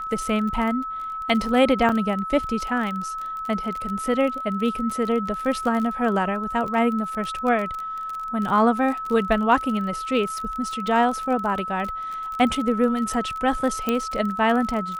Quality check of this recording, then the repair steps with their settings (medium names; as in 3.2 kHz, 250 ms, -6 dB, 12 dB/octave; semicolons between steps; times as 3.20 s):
crackle 34 per s -28 dBFS
whine 1.3 kHz -28 dBFS
1.89 s: dropout 3.8 ms
13.89 s: pop -9 dBFS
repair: de-click; band-stop 1.3 kHz, Q 30; interpolate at 1.89 s, 3.8 ms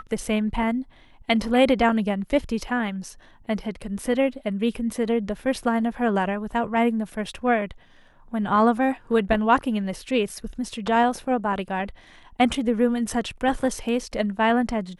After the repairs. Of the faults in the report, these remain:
13.89 s: pop